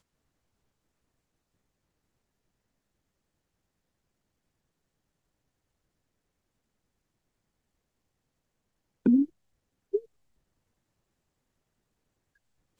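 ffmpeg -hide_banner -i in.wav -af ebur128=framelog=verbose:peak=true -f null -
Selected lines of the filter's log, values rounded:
Integrated loudness:
  I:         -28.0 LUFS
  Threshold: -38.4 LUFS
Loudness range:
  LRA:        10.6 LU
  Threshold: -53.7 LUFS
  LRA low:   -43.3 LUFS
  LRA high:  -32.8 LUFS
True peak:
  Peak:      -13.6 dBFS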